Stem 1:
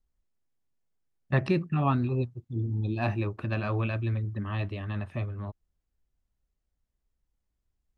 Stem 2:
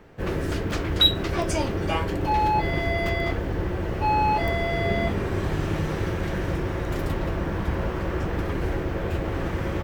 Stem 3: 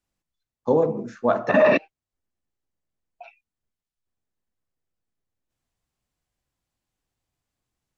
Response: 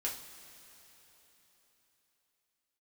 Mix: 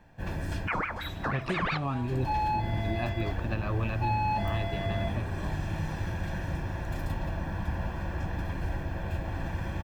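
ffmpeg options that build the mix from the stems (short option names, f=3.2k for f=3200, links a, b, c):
-filter_complex "[0:a]volume=-1.5dB[a];[1:a]aecho=1:1:1.2:0.68,volume=-10.5dB,asplit=2[b][c];[c]volume=-10dB[d];[2:a]aeval=exprs='val(0)*sin(2*PI*1200*n/s+1200*0.65/5.8*sin(2*PI*5.8*n/s))':c=same,volume=-6dB,asplit=3[e][f][g];[f]volume=-18dB[h];[g]apad=whole_len=433569[i];[b][i]sidechaincompress=threshold=-46dB:ratio=8:attack=16:release=287[j];[3:a]atrim=start_sample=2205[k];[d][h]amix=inputs=2:normalize=0[l];[l][k]afir=irnorm=-1:irlink=0[m];[a][j][e][m]amix=inputs=4:normalize=0,alimiter=limit=-19.5dB:level=0:latency=1:release=261"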